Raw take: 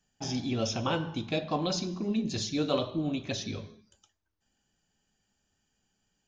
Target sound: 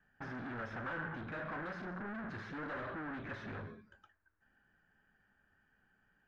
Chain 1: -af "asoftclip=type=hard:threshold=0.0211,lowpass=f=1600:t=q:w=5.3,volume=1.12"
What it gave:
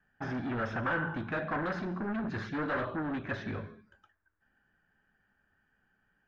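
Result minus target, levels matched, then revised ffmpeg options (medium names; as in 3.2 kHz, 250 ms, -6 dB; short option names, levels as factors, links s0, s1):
hard clipper: distortion -4 dB
-af "asoftclip=type=hard:threshold=0.00596,lowpass=f=1600:t=q:w=5.3,volume=1.12"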